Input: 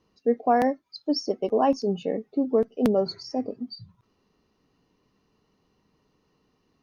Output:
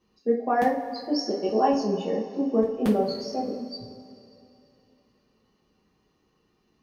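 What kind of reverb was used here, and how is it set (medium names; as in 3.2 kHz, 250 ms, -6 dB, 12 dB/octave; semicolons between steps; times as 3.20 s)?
two-slope reverb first 0.31 s, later 2.9 s, from -18 dB, DRR -5 dB; trim -5.5 dB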